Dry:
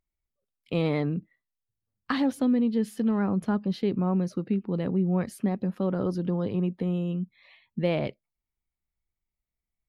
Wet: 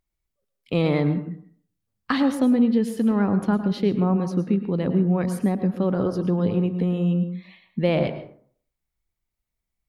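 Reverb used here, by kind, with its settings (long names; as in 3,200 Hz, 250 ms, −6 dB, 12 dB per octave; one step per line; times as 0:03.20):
dense smooth reverb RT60 0.53 s, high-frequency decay 0.5×, pre-delay 95 ms, DRR 9.5 dB
level +4.5 dB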